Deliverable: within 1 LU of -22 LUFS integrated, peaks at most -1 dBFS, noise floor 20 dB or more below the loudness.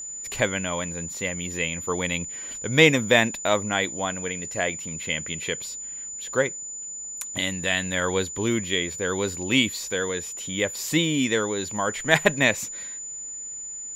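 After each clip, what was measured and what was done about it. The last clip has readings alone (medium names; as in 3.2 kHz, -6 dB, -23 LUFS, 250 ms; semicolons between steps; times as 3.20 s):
steady tone 7 kHz; tone level -33 dBFS; loudness -25.0 LUFS; peak level -1.0 dBFS; loudness target -22.0 LUFS
-> band-stop 7 kHz, Q 30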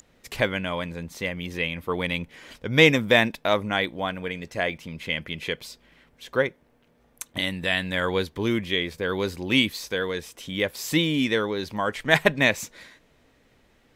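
steady tone not found; loudness -25.0 LUFS; peak level -1.0 dBFS; loudness target -22.0 LUFS
-> trim +3 dB; peak limiter -1 dBFS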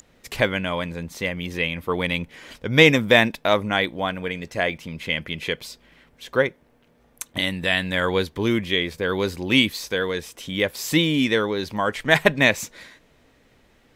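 loudness -22.0 LUFS; peak level -1.0 dBFS; noise floor -59 dBFS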